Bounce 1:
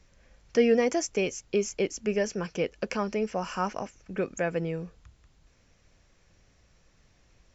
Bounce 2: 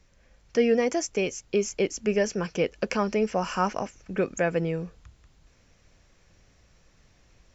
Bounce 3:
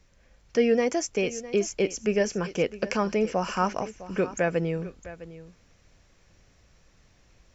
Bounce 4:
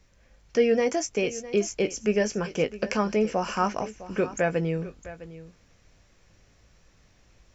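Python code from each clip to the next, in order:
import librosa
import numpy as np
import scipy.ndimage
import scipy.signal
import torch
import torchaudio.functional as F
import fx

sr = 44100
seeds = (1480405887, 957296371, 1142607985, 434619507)

y1 = fx.rider(x, sr, range_db=3, speed_s=2.0)
y1 = y1 * 10.0 ** (2.0 / 20.0)
y2 = y1 + 10.0 ** (-16.0 / 20.0) * np.pad(y1, (int(657 * sr / 1000.0), 0))[:len(y1)]
y3 = fx.doubler(y2, sr, ms=19.0, db=-11.0)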